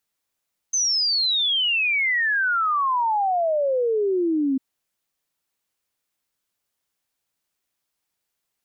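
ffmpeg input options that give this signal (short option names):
-f lavfi -i "aevalsrc='0.119*clip(min(t,3.85-t)/0.01,0,1)*sin(2*PI*6300*3.85/log(260/6300)*(exp(log(260/6300)*t/3.85)-1))':d=3.85:s=44100"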